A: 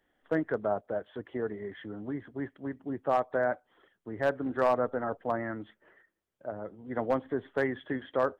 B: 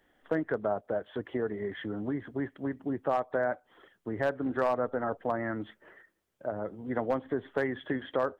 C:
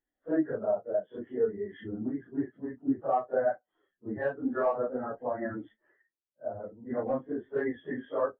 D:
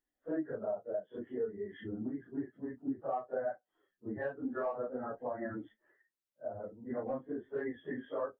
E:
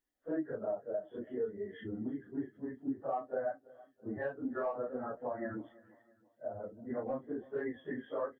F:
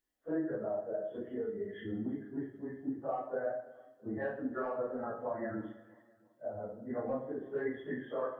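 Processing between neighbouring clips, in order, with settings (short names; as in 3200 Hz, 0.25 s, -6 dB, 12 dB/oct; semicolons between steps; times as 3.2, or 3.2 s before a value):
compressor 2:1, threshold -37 dBFS, peak gain reduction 9 dB; gain +6 dB
phase scrambler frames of 0.1 s; spectral expander 1.5:1
compressor 2:1, threshold -35 dBFS, peak gain reduction 7.5 dB; gain -2 dB
feedback echo 0.331 s, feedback 45%, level -22 dB
plate-style reverb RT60 0.7 s, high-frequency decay 0.85×, DRR 3.5 dB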